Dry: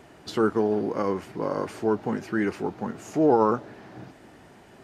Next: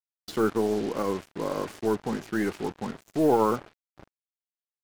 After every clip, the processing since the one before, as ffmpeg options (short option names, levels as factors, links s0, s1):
-af "agate=range=0.0224:threshold=0.0141:ratio=3:detection=peak,aeval=exprs='0.422*(cos(1*acos(clip(val(0)/0.422,-1,1)))-cos(1*PI/2))+0.00841*(cos(8*acos(clip(val(0)/0.422,-1,1)))-cos(8*PI/2))':c=same,acrusher=bits=5:mix=0:aa=0.5,volume=0.794"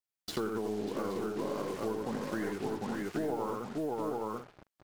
-filter_complex "[0:a]asplit=2[s0][s1];[s1]aecho=0:1:86|592|821|876:0.596|0.473|0.501|0.15[s2];[s0][s2]amix=inputs=2:normalize=0,acompressor=threshold=0.0251:ratio=6"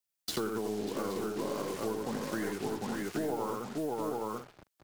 -filter_complex "[0:a]highshelf=f=3900:g=7.5,acrossover=split=110|1700|2100[s0][s1][s2][s3];[s3]acrusher=bits=3:mode=log:mix=0:aa=0.000001[s4];[s0][s1][s2][s4]amix=inputs=4:normalize=0"